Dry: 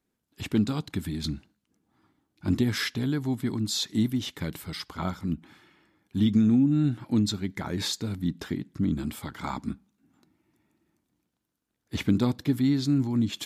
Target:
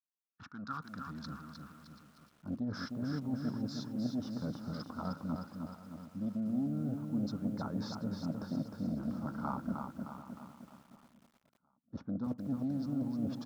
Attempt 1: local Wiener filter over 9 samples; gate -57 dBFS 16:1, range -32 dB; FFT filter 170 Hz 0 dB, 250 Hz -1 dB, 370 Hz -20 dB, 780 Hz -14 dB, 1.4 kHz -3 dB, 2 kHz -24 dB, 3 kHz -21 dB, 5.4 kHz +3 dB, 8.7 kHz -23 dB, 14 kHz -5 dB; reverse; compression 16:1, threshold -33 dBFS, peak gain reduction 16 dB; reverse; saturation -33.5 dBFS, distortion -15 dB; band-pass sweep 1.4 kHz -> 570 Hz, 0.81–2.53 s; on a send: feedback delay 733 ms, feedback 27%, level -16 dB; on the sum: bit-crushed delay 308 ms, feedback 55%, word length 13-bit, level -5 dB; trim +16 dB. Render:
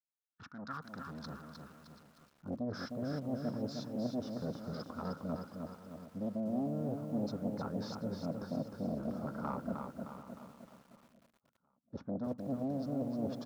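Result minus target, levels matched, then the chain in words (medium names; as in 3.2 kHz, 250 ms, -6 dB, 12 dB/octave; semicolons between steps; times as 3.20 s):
saturation: distortion +12 dB
local Wiener filter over 9 samples; gate -57 dBFS 16:1, range -32 dB; FFT filter 170 Hz 0 dB, 250 Hz -1 dB, 370 Hz -20 dB, 780 Hz -14 dB, 1.4 kHz -3 dB, 2 kHz -24 dB, 3 kHz -21 dB, 5.4 kHz +3 dB, 8.7 kHz -23 dB, 14 kHz -5 dB; reverse; compression 16:1, threshold -33 dBFS, peak gain reduction 16 dB; reverse; saturation -25.5 dBFS, distortion -27 dB; band-pass sweep 1.4 kHz -> 570 Hz, 0.81–2.53 s; on a send: feedback delay 733 ms, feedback 27%, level -16 dB; on the sum: bit-crushed delay 308 ms, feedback 55%, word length 13-bit, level -5 dB; trim +16 dB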